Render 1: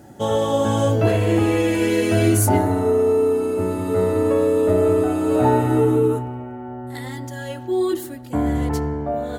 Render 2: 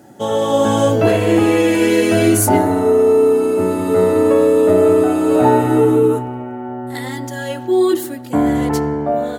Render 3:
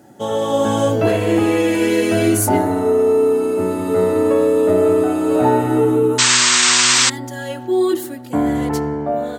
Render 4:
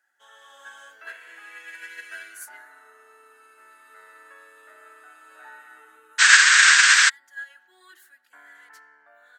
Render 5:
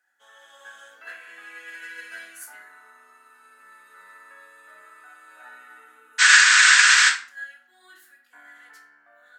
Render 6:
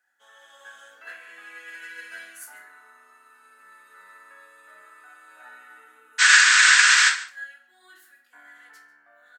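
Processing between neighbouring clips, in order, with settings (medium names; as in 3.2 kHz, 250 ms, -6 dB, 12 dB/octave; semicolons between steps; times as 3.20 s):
high-pass 150 Hz 12 dB/octave; level rider gain up to 5.5 dB; trim +1.5 dB
painted sound noise, 6.18–7.10 s, 920–8500 Hz -11 dBFS; trim -2.5 dB
resonant high-pass 1.6 kHz, resonance Q 6.6; upward expansion 2.5:1, over -20 dBFS; trim -2.5 dB
simulated room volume 500 m³, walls furnished, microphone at 1.9 m; trim -2 dB
delay 144 ms -18.5 dB; trim -1 dB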